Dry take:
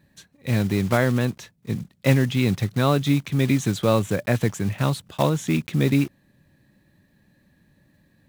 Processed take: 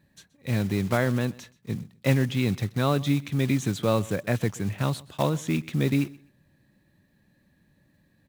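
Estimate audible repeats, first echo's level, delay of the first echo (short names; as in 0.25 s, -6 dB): 2, -22.0 dB, 0.127 s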